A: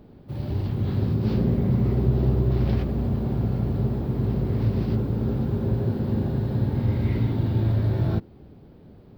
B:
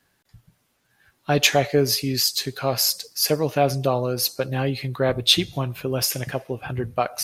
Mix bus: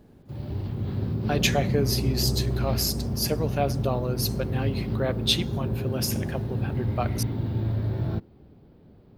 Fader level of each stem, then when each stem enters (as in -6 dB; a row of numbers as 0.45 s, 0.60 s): -4.5 dB, -6.5 dB; 0.00 s, 0.00 s